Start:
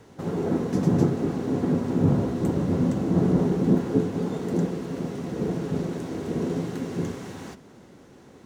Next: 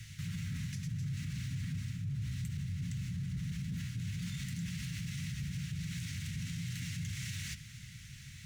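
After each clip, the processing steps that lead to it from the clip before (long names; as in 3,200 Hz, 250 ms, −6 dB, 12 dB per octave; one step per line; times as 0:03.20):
elliptic band-stop filter 130–2,100 Hz, stop band 60 dB
reversed playback
downward compressor 6 to 1, threshold −39 dBFS, peak gain reduction 16.5 dB
reversed playback
brickwall limiter −41 dBFS, peak gain reduction 9.5 dB
level +9.5 dB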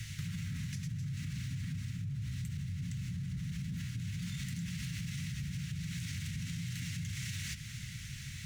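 downward compressor, threshold −42 dBFS, peak gain reduction 7.5 dB
level +6 dB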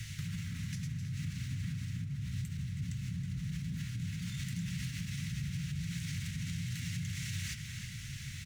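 slap from a distant wall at 55 metres, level −7 dB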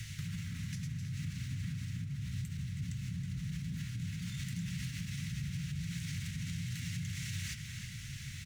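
one half of a high-frequency compander encoder only
level −1 dB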